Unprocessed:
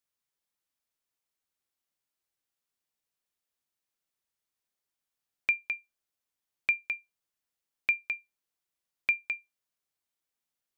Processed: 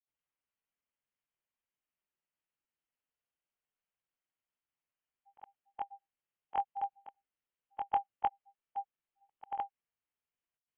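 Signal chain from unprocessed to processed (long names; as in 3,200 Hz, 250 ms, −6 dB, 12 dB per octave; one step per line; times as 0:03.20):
every overlapping window played backwards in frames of 46 ms
voice inversion scrambler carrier 3,200 Hz
granular cloud, spray 368 ms, pitch spread up and down by 0 semitones
level +1 dB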